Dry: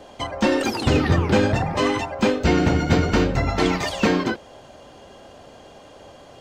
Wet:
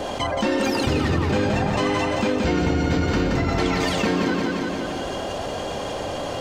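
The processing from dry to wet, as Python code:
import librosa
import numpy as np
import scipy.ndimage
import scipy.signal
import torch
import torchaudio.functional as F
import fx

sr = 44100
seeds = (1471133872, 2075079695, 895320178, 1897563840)

p1 = x + fx.echo_feedback(x, sr, ms=174, feedback_pct=46, wet_db=-6.0, dry=0)
p2 = fx.env_flatten(p1, sr, amount_pct=70)
y = p2 * librosa.db_to_amplitude(-6.0)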